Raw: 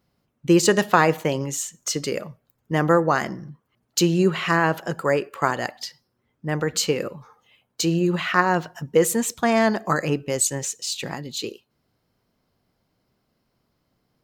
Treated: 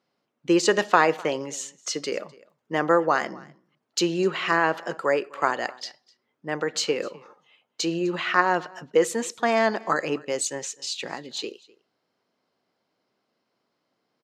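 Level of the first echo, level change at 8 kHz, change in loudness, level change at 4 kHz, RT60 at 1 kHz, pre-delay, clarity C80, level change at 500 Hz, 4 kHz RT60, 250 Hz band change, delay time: −23.5 dB, −6.0 dB, −2.5 dB, −1.5 dB, no reverb audible, no reverb audible, no reverb audible, −2.0 dB, no reverb audible, −5.0 dB, 253 ms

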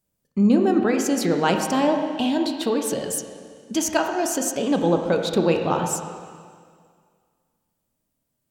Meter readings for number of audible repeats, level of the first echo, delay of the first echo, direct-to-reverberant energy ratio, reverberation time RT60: no echo audible, no echo audible, no echo audible, 3.5 dB, 2.0 s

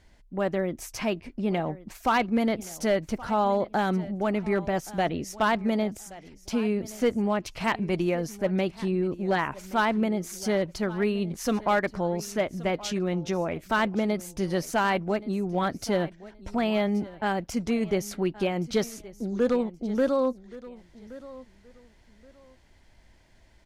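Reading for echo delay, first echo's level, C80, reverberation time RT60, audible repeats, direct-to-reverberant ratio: 1,124 ms, −18.5 dB, no reverb audible, no reverb audible, 2, no reverb audible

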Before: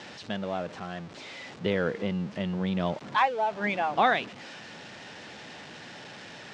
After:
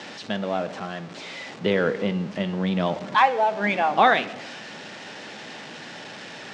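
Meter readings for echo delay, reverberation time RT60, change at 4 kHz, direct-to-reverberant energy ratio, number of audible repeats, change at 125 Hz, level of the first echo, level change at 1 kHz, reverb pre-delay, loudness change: no echo audible, 0.90 s, +5.5 dB, 11.5 dB, no echo audible, +3.5 dB, no echo audible, +6.0 dB, 4 ms, +5.5 dB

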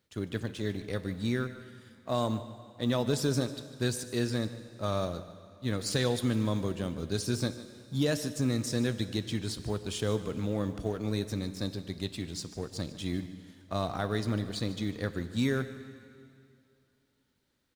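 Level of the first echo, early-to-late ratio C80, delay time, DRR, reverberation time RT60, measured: −16.5 dB, 12.0 dB, 149 ms, 10.5 dB, 2.5 s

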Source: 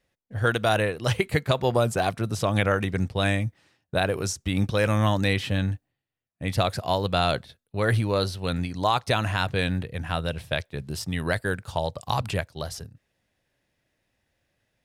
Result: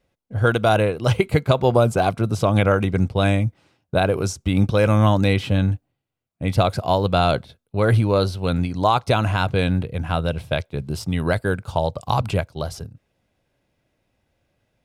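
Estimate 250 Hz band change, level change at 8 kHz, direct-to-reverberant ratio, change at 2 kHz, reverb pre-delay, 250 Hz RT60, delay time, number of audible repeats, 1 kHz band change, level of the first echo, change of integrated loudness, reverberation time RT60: +6.5 dB, −0.5 dB, no reverb audible, +1.0 dB, no reverb audible, no reverb audible, no echo audible, no echo audible, +5.0 dB, no echo audible, +5.5 dB, no reverb audible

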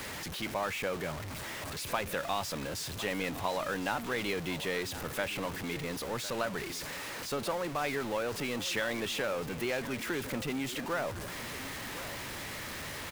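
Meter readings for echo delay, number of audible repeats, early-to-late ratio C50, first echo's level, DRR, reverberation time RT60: 1,059 ms, 1, no reverb audible, −14.5 dB, no reverb audible, no reverb audible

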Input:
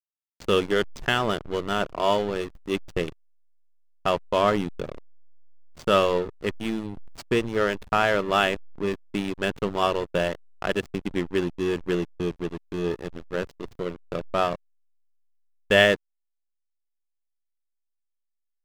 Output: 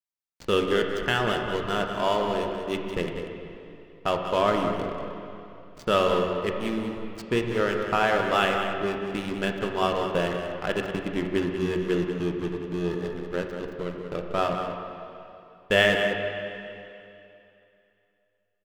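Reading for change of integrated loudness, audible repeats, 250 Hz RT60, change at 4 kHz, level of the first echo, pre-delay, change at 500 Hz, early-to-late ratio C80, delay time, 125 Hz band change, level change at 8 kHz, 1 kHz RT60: −1.0 dB, 1, 2.8 s, −1.0 dB, −9.0 dB, 7 ms, −0.5 dB, 3.5 dB, 189 ms, +0.5 dB, −2.0 dB, 2.8 s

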